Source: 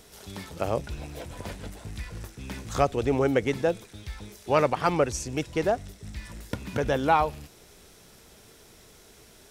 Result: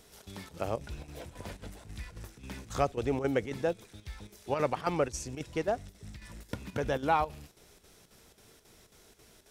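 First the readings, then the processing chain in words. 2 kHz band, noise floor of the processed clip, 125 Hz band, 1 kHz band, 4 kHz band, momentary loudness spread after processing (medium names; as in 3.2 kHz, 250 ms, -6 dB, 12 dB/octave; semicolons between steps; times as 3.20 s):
-6.5 dB, -60 dBFS, -6.5 dB, -6.0 dB, -6.5 dB, 17 LU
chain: square tremolo 3.7 Hz, depth 60%, duty 80%; trim -5.5 dB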